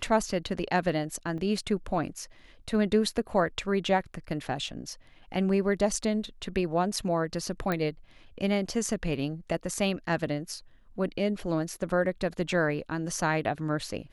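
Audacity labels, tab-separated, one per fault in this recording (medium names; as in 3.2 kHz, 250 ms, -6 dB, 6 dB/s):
1.380000	1.380000	dropout 3.6 ms
7.720000	7.720000	pop -16 dBFS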